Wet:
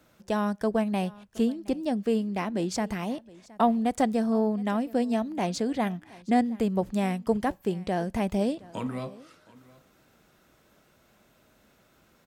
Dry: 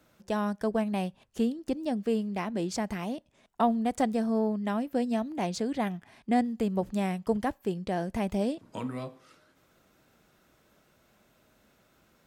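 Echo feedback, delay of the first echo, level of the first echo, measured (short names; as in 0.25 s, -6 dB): no steady repeat, 0.718 s, -22.0 dB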